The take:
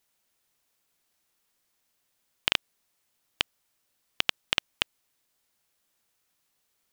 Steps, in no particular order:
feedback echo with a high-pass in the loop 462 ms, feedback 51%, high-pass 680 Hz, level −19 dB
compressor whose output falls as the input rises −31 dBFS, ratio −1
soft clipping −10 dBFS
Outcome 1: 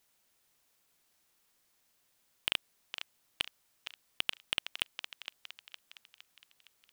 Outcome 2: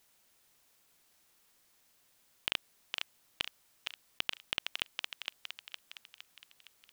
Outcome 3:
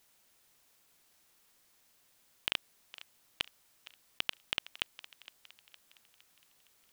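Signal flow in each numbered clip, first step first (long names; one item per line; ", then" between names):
feedback echo with a high-pass in the loop, then soft clipping, then compressor whose output falls as the input rises
feedback echo with a high-pass in the loop, then compressor whose output falls as the input rises, then soft clipping
compressor whose output falls as the input rises, then feedback echo with a high-pass in the loop, then soft clipping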